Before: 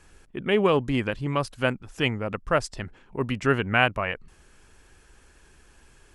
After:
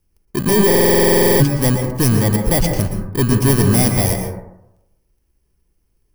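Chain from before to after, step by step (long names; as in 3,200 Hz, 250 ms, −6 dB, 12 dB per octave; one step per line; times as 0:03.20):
samples in bit-reversed order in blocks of 32 samples
leveller curve on the samples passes 5
low-shelf EQ 300 Hz +8.5 dB
dense smooth reverb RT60 0.87 s, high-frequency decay 0.3×, pre-delay 105 ms, DRR 4 dB
buffer that repeats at 0:00.66, samples 2,048, times 15
level −7.5 dB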